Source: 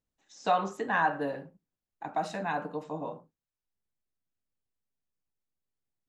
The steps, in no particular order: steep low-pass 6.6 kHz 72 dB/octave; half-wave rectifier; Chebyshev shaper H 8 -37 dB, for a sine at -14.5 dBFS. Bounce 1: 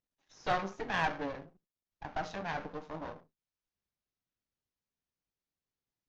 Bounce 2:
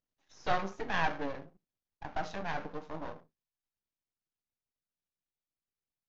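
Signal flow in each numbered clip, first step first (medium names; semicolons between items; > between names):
half-wave rectifier > steep low-pass > Chebyshev shaper; Chebyshev shaper > half-wave rectifier > steep low-pass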